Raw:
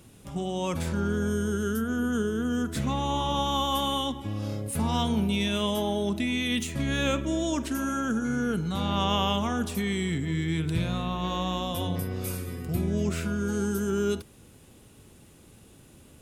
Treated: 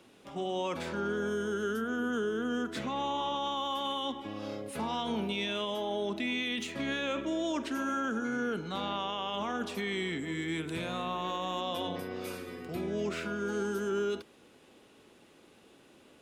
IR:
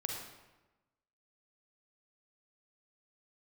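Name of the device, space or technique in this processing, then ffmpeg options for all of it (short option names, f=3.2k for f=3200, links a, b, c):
DJ mixer with the lows and highs turned down: -filter_complex "[0:a]acrossover=split=250 5100:gain=0.0891 1 0.178[a][b][c];[a][b][c]amix=inputs=3:normalize=0,alimiter=level_in=1dB:limit=-24dB:level=0:latency=1:release=19,volume=-1dB,asettb=1/sr,asplit=3[d][e][f];[d]atrim=end=10.184[g];[e]atrim=start=10.18:end=11.61,asetpts=PTS-STARTPTS,afade=t=in:d=0.004:c=qsin,afade=t=out:st=1.426:d=0.004:c=qsin,highshelf=f=6.3k:t=q:w=1.5:g=7.5[h];[f]atrim=start=11.606[i];[g][h]acrossfade=d=0.004:c1=hsin:c2=qsin[j];[j][i]acrossfade=d=0.004:c1=qsin:c2=hsin"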